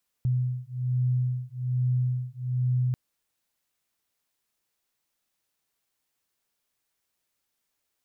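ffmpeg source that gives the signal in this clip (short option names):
-f lavfi -i "aevalsrc='0.0447*(sin(2*PI*125*t)+sin(2*PI*126.2*t))':d=2.69:s=44100"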